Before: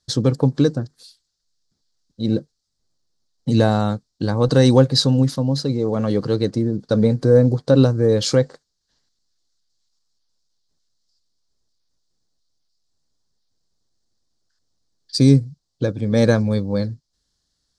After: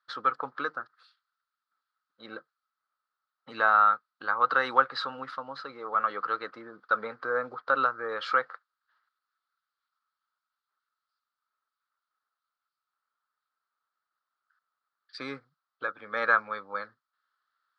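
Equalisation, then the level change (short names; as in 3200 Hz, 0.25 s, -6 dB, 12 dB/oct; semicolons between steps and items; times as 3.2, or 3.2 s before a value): resonant high-pass 1300 Hz, resonance Q 9.5; air absorption 460 m; high shelf 7100 Hz -8.5 dB; 0.0 dB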